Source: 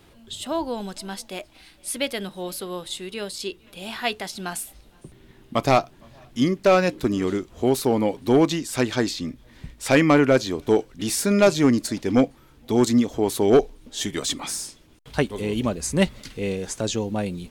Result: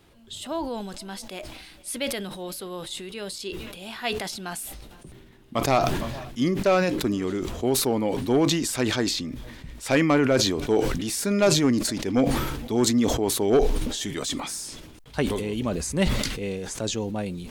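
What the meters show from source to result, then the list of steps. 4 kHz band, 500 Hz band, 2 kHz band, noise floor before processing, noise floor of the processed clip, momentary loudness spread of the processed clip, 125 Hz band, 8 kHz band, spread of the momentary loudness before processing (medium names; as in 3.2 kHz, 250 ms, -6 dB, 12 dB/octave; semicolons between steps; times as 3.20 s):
+1.0 dB, -3.0 dB, -2.5 dB, -53 dBFS, -48 dBFS, 15 LU, -1.0 dB, +1.0 dB, 16 LU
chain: decay stretcher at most 38 dB/s; trim -4 dB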